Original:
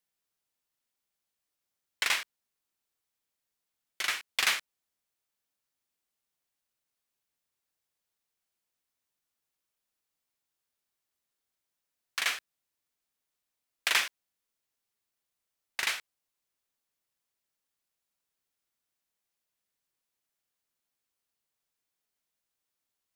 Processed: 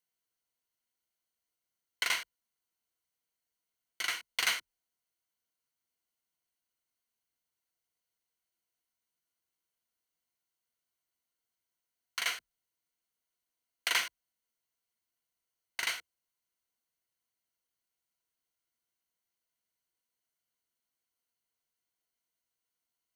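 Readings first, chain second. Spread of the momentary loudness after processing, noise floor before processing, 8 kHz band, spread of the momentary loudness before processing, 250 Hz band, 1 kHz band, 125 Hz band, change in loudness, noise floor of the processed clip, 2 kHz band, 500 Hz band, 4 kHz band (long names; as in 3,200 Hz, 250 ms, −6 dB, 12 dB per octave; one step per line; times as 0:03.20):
12 LU, below −85 dBFS, −2.5 dB, 12 LU, −2.5 dB, −3.0 dB, can't be measured, −3.0 dB, below −85 dBFS, −3.5 dB, −3.0 dB, −2.5 dB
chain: EQ curve with evenly spaced ripples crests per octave 1.9, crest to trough 8 dB
level −4 dB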